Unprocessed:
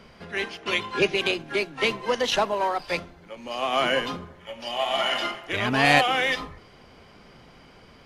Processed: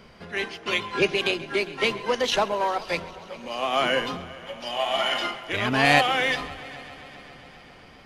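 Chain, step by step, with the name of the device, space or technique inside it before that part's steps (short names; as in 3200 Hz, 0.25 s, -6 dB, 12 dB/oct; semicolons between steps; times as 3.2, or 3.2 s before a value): multi-head tape echo (multi-head echo 0.134 s, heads first and third, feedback 69%, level -21 dB; wow and flutter 21 cents)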